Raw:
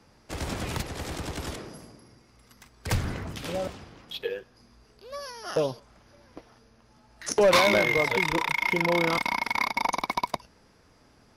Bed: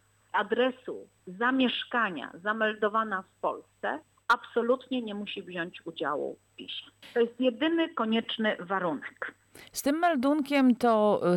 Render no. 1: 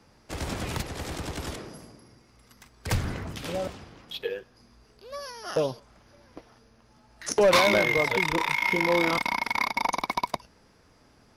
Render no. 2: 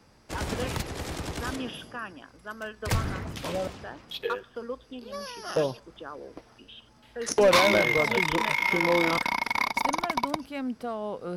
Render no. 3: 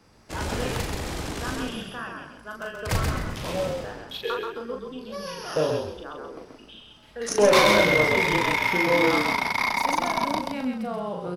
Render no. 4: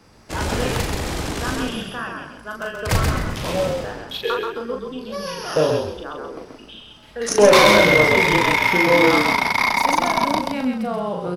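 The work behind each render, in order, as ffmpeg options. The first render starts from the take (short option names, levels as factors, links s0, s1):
-filter_complex "[0:a]asettb=1/sr,asplit=3[s0][s1][s2];[s0]atrim=end=8.384[s3];[s1]atrim=start=8.38:end=9.11,asetpts=PTS-STARTPTS,afade=t=in:d=0.004:c=qsin,afade=t=out:st=0.726:d=0.004:c=qsin,asplit=2[s4][s5];[s5]adelay=21,volume=0.447[s6];[s4][s6]amix=inputs=2:normalize=0,atrim=end_sample=32193[s7];[s2]atrim=start=9.106[s8];[s3][s7]acrossfade=d=0.004:c1=hsin:c2=qsin[s9];[s9][s8]acrossfade=d=0.004:c1=qsin:c2=hsin"
-filter_complex "[1:a]volume=0.316[s0];[0:a][s0]amix=inputs=2:normalize=0"
-filter_complex "[0:a]asplit=2[s0][s1];[s1]adelay=39,volume=0.668[s2];[s0][s2]amix=inputs=2:normalize=0,asplit=5[s3][s4][s5][s6][s7];[s4]adelay=131,afreqshift=-33,volume=0.631[s8];[s5]adelay=262,afreqshift=-66,volume=0.209[s9];[s6]adelay=393,afreqshift=-99,volume=0.0684[s10];[s7]adelay=524,afreqshift=-132,volume=0.0226[s11];[s3][s8][s9][s10][s11]amix=inputs=5:normalize=0"
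-af "volume=2,alimiter=limit=0.794:level=0:latency=1"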